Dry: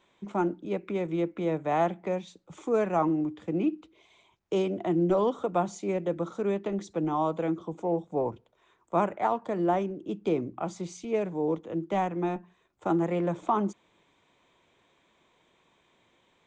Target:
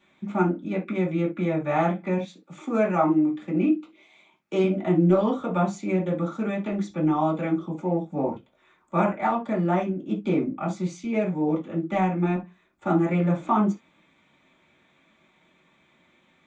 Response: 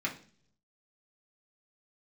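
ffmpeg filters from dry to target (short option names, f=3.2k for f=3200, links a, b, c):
-filter_complex "[0:a]asettb=1/sr,asplit=3[a][b][c];[a]atrim=end=2.184[d];[b]atrim=start=2.18:end=4.64,asetpts=PTS-STARTPTS,afade=t=in:d=0.004:c=qsin,afade=t=out:st=2.456:d=0.004:c=qsin,highpass=180[e];[c]atrim=start=4.636[f];[d][e]acrossfade=d=0.004:c1=hsin:c2=qsin[g];[g][f]acrossfade=d=0.004:c1=qsin:c2=hsin[h];[1:a]atrim=start_sample=2205,atrim=end_sample=3528[i];[h][i]afir=irnorm=-1:irlink=0"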